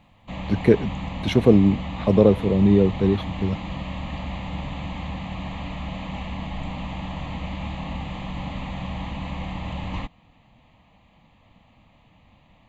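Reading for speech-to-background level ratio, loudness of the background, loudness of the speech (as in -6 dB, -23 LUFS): 12.5 dB, -32.5 LUFS, -20.0 LUFS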